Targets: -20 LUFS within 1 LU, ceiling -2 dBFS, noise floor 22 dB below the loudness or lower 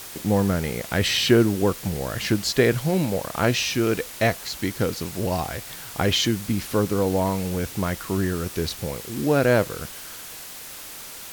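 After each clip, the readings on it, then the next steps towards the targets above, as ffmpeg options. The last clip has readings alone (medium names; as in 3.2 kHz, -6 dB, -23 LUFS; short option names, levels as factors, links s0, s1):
noise floor -39 dBFS; noise floor target -46 dBFS; loudness -23.5 LUFS; peak level -4.0 dBFS; loudness target -20.0 LUFS
-> -af "afftdn=nr=7:nf=-39"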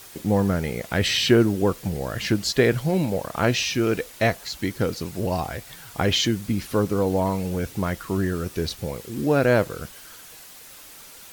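noise floor -45 dBFS; noise floor target -46 dBFS
-> -af "afftdn=nr=6:nf=-45"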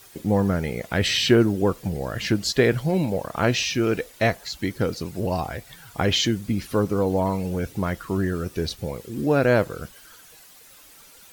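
noise floor -49 dBFS; loudness -23.5 LUFS; peak level -4.0 dBFS; loudness target -20.0 LUFS
-> -af "volume=1.5,alimiter=limit=0.794:level=0:latency=1"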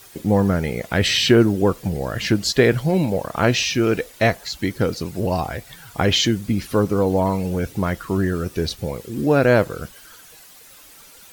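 loudness -20.0 LUFS; peak level -2.0 dBFS; noise floor -46 dBFS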